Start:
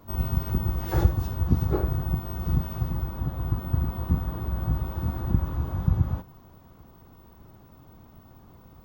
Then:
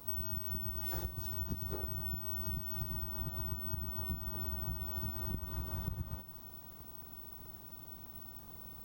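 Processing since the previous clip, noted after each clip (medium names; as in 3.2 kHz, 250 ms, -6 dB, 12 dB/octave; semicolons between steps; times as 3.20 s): pre-emphasis filter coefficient 0.8; compression 12:1, threshold -45 dBFS, peak gain reduction 19 dB; trim +9.5 dB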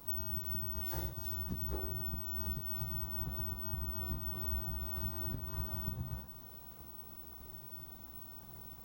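feedback comb 64 Hz, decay 0.59 s, harmonics all, mix 80%; trim +8 dB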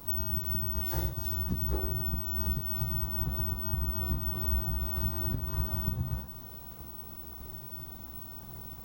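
bass shelf 240 Hz +3.5 dB; trim +5.5 dB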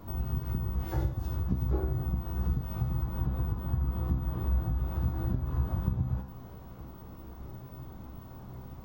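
low-pass 1.3 kHz 6 dB/octave; trim +3 dB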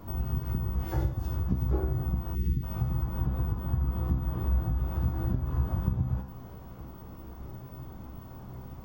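time-frequency box 2.35–2.63 s, 450–1800 Hz -25 dB; band-stop 3.9 kHz, Q 13; trim +1.5 dB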